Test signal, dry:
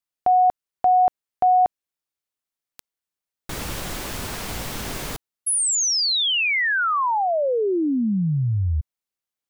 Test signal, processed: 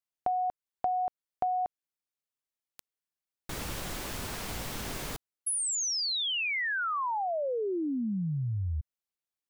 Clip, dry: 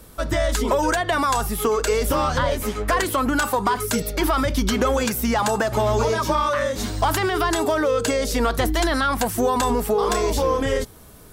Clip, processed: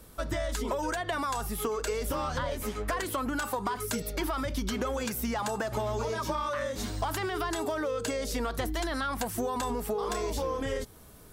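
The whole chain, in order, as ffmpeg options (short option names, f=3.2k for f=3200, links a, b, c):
-af "acompressor=threshold=-23dB:ratio=6:attack=63:release=223:knee=6,volume=-6.5dB"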